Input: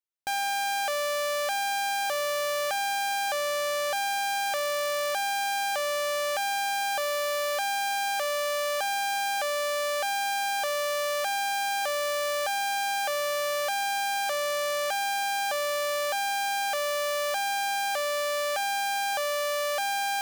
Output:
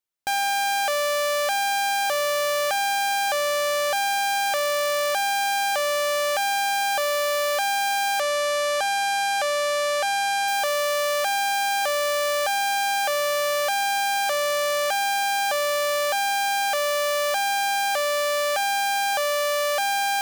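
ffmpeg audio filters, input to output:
-filter_complex "[0:a]asettb=1/sr,asplit=3[s0][s1][s2];[s0]atrim=end=8.204[s3];[s1]atrim=start=8.2:end=10.48,asetpts=PTS-STARTPTS,afade=t=in:d=0.004:c=qsin,afade=t=out:st=2.276:d=0.004:c=qsin,lowpass=11000[s4];[s2]atrim=start=10.476[s5];[s3][s4]acrossfade=d=0.004:c1=hsin:c2=qsin[s6];[s6][s5]acrossfade=d=0.004:c1=qsin:c2=hsin,volume=1.78"

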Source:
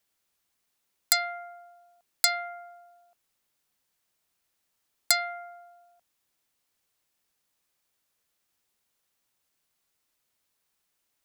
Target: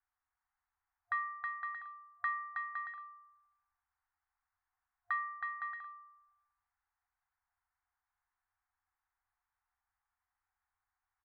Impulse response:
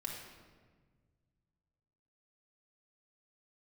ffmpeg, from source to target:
-af "highpass=f=160:t=q:w=0.5412,highpass=f=160:t=q:w=1.307,lowpass=f=2000:t=q:w=0.5176,lowpass=f=2000:t=q:w=0.7071,lowpass=f=2000:t=q:w=1.932,afreqshift=-220,aecho=1:1:320|512|627.2|696.3|737.8:0.631|0.398|0.251|0.158|0.1,afftfilt=real='re*(1-between(b*sr/4096,100,710))':imag='im*(1-between(b*sr/4096,100,710))':win_size=4096:overlap=0.75,volume=0.708"

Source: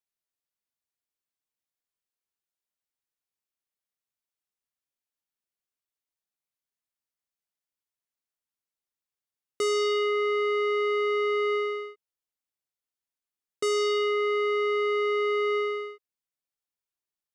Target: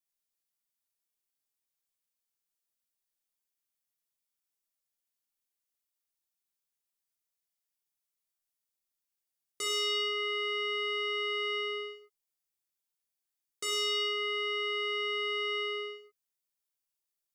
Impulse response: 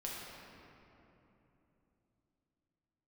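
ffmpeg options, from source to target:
-filter_complex "[0:a]highshelf=f=4200:g=11.5,acrossover=split=1200|4400[s0][s1][s2];[s0]alimiter=level_in=2.24:limit=0.0631:level=0:latency=1,volume=0.447[s3];[s3][s1][s2]amix=inputs=3:normalize=0[s4];[1:a]atrim=start_sample=2205,atrim=end_sample=6174[s5];[s4][s5]afir=irnorm=-1:irlink=0,volume=0.75"

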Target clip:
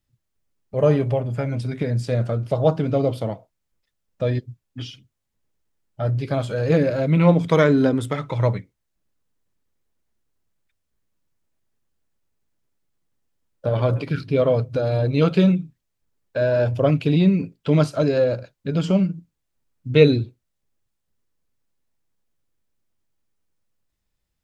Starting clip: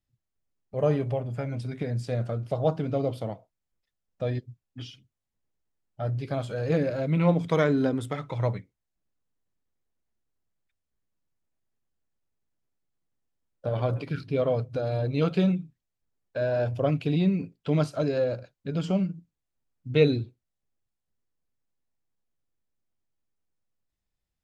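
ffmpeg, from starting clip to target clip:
-af "bandreject=f=740:w=14,volume=2.24"

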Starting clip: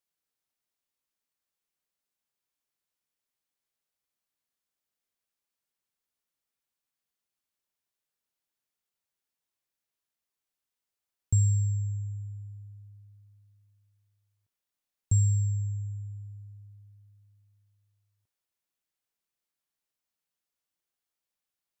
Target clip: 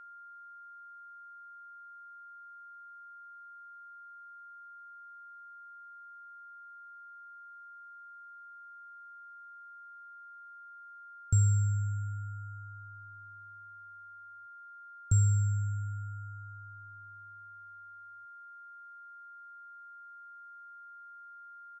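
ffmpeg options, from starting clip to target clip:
-af "aeval=exprs='0.178*(cos(1*acos(clip(val(0)/0.178,-1,1)))-cos(1*PI/2))+0.00224*(cos(6*acos(clip(val(0)/0.178,-1,1)))-cos(6*PI/2))':c=same,aeval=exprs='val(0)+0.00501*sin(2*PI*1400*n/s)':c=same,aresample=22050,aresample=44100,volume=0.841"

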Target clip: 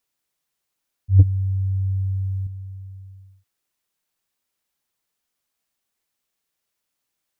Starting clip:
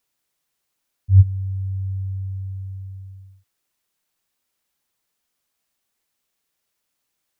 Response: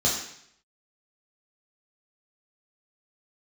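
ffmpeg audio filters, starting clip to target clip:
-filter_complex "[0:a]asettb=1/sr,asplit=3[s0][s1][s2];[s0]atrim=end=1.194[s3];[s1]atrim=start=1.19:end=2.47,asetpts=PTS-STARTPTS,afade=t=in:d=0.004:c=qsin,afade=t=out:st=1.276:d=0.004:c=qsin,acontrast=64[s4];[s2]atrim=start=2.466[s5];[s3][s4]acrossfade=d=0.004:c1=hsin:c2=qsin[s6];[s6][s5]acrossfade=d=0.004:c1=qsin:c2=hsin,volume=0.708"

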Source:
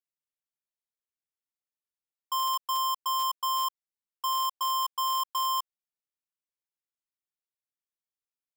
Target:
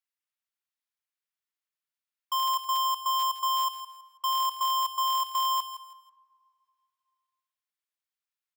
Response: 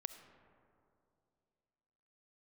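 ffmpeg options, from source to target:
-filter_complex "[0:a]highpass=1100,aecho=1:1:163|326|489:0.266|0.0772|0.0224,asplit=2[s0][s1];[1:a]atrim=start_sample=2205,lowpass=4800[s2];[s1][s2]afir=irnorm=-1:irlink=0,volume=1.06[s3];[s0][s3]amix=inputs=2:normalize=0"

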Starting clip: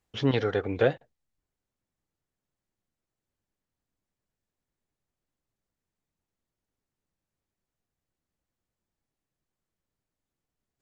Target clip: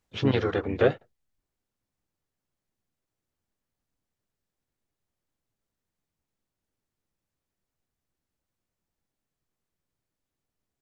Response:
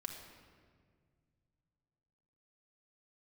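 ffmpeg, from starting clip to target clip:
-filter_complex "[0:a]asplit=3[s0][s1][s2];[s1]asetrate=35002,aresample=44100,atempo=1.25992,volume=0.501[s3];[s2]asetrate=52444,aresample=44100,atempo=0.840896,volume=0.126[s4];[s0][s3][s4]amix=inputs=3:normalize=0"

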